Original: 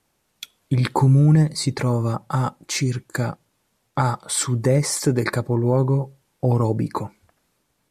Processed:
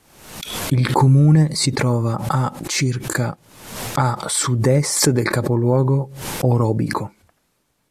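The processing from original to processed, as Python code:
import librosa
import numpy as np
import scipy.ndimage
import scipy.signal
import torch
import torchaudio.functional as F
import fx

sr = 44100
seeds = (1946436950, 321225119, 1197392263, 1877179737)

y = fx.pre_swell(x, sr, db_per_s=67.0)
y = F.gain(torch.from_numpy(y), 2.0).numpy()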